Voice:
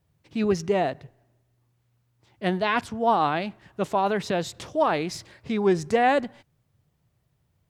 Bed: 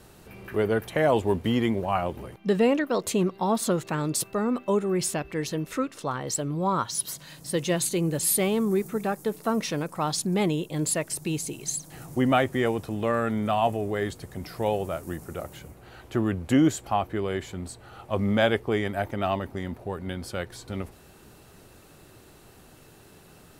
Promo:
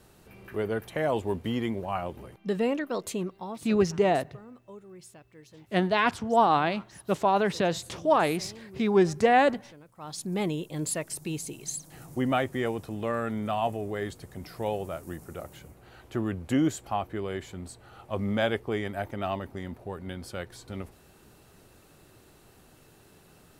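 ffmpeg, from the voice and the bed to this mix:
-filter_complex "[0:a]adelay=3300,volume=1[s0];[1:a]volume=4.22,afade=t=out:st=3.01:d=0.71:silence=0.141254,afade=t=in:st=9.95:d=0.43:silence=0.125893[s1];[s0][s1]amix=inputs=2:normalize=0"

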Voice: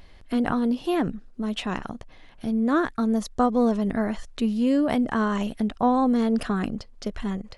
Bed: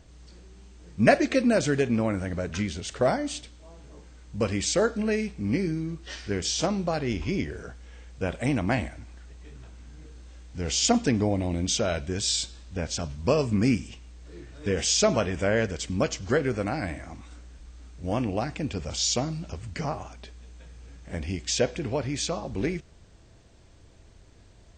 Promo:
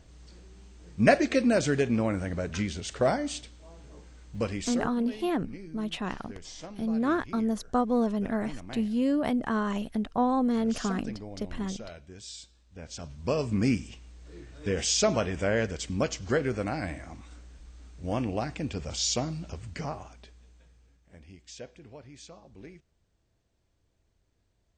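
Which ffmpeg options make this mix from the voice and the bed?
-filter_complex "[0:a]adelay=4350,volume=0.596[s0];[1:a]volume=4.47,afade=t=out:st=4.25:d=0.65:silence=0.16788,afade=t=in:st=12.68:d=0.96:silence=0.188365,afade=t=out:st=19.52:d=1.48:silence=0.149624[s1];[s0][s1]amix=inputs=2:normalize=0"

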